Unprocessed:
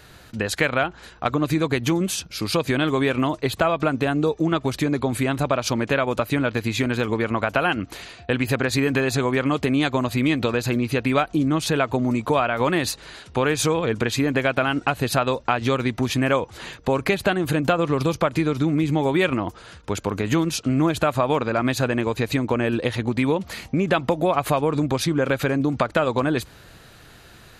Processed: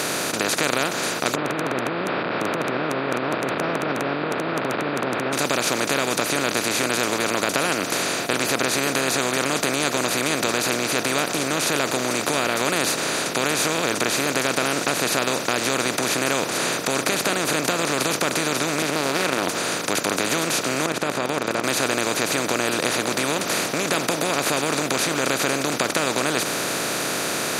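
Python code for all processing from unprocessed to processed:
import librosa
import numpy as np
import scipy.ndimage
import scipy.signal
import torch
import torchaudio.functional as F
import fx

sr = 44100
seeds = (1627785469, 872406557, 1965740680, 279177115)

y = fx.chain(x, sr, fx.delta_mod(bps=16000, step_db=-33.0),
    fx.ellip_bandpass(low_hz=110.0, high_hz=1300.0, order=3, stop_db=80),
    fx.over_compress(threshold_db=-26.0, ratio=-1.0), at=(1.35, 5.33))
y = fx.chain(y, sr, fx.bandpass_edges(low_hz=170.0, high_hz=2400.0),
    fx.doppler_dist(depth_ms=0.34), at=(18.82, 19.43))
y = fx.chain(y, sr, fx.lowpass(hz=1000.0, slope=12),
    fx.level_steps(step_db=12), at=(20.86, 21.64))
y = fx.bin_compress(y, sr, power=0.2)
y = scipy.signal.sosfilt(scipy.signal.butter(2, 150.0, 'highpass', fs=sr, output='sos'), y)
y = fx.high_shelf(y, sr, hz=3300.0, db=11.0)
y = F.gain(torch.from_numpy(y), -12.0).numpy()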